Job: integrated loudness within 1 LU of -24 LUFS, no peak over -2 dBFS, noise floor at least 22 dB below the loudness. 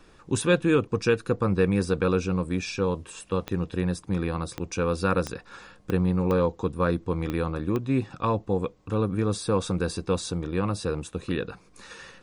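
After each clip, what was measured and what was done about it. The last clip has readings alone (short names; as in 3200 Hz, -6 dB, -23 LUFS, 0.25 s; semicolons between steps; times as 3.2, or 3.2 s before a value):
clicks 7; loudness -27.0 LUFS; peak -9.0 dBFS; loudness target -24.0 LUFS
-> de-click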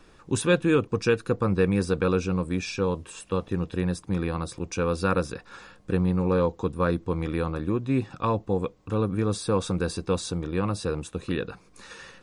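clicks 0; loudness -27.0 LUFS; peak -9.0 dBFS; loudness target -24.0 LUFS
-> gain +3 dB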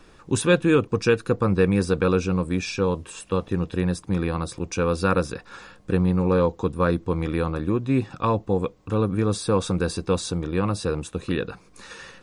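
loudness -24.0 LUFS; peak -6.0 dBFS; noise floor -53 dBFS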